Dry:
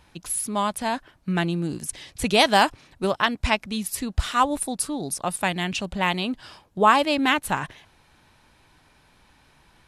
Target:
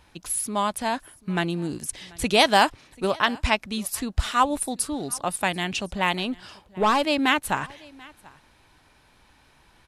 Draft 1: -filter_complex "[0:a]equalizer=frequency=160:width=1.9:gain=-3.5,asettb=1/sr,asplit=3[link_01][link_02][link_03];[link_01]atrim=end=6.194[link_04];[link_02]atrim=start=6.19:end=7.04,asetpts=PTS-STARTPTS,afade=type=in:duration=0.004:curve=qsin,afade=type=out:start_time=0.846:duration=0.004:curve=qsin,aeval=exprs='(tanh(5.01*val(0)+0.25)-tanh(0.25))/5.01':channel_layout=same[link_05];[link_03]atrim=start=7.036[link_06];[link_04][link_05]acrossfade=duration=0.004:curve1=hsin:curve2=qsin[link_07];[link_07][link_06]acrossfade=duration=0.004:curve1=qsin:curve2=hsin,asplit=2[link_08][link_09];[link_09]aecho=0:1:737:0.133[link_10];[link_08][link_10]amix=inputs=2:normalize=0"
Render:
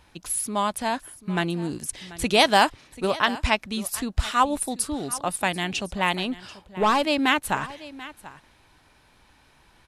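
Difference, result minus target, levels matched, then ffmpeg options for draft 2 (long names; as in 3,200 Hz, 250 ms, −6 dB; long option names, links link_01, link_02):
echo-to-direct +6.5 dB
-filter_complex "[0:a]equalizer=frequency=160:width=1.9:gain=-3.5,asettb=1/sr,asplit=3[link_01][link_02][link_03];[link_01]atrim=end=6.194[link_04];[link_02]atrim=start=6.19:end=7.04,asetpts=PTS-STARTPTS,afade=type=in:duration=0.004:curve=qsin,afade=type=out:start_time=0.846:duration=0.004:curve=qsin,aeval=exprs='(tanh(5.01*val(0)+0.25)-tanh(0.25))/5.01':channel_layout=same[link_05];[link_03]atrim=start=7.036[link_06];[link_04][link_05]acrossfade=duration=0.004:curve1=hsin:curve2=qsin[link_07];[link_07][link_06]acrossfade=duration=0.004:curve1=qsin:curve2=hsin,asplit=2[link_08][link_09];[link_09]aecho=0:1:737:0.0631[link_10];[link_08][link_10]amix=inputs=2:normalize=0"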